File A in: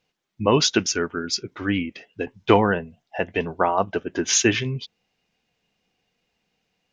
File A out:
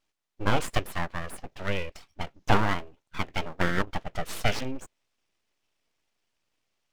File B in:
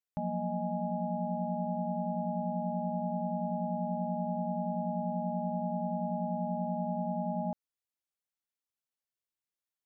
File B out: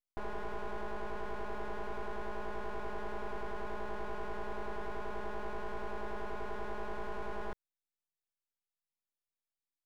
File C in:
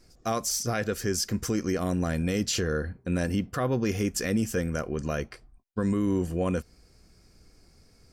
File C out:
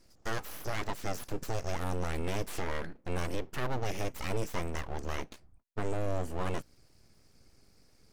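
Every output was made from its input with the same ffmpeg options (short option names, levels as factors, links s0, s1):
-filter_complex "[0:a]acrossover=split=3100[s0][s1];[s1]acompressor=threshold=0.0158:ratio=4:attack=1:release=60[s2];[s0][s2]amix=inputs=2:normalize=0,aeval=exprs='abs(val(0))':c=same,volume=0.668"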